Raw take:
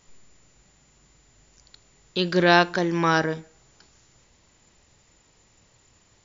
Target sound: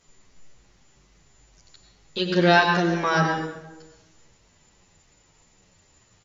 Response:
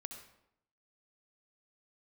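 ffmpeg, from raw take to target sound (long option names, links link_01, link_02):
-filter_complex "[1:a]atrim=start_sample=2205,asetrate=30870,aresample=44100[link_01];[0:a][link_01]afir=irnorm=-1:irlink=0,asplit=2[link_02][link_03];[link_03]adelay=9.6,afreqshift=-2.4[link_04];[link_02][link_04]amix=inputs=2:normalize=1,volume=4.5dB"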